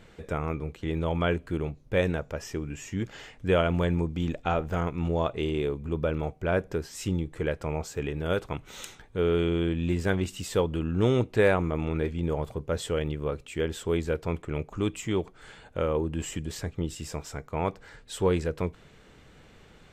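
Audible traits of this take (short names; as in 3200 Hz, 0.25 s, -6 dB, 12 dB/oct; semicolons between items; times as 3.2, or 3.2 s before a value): noise floor -55 dBFS; spectral tilt -6.0 dB/oct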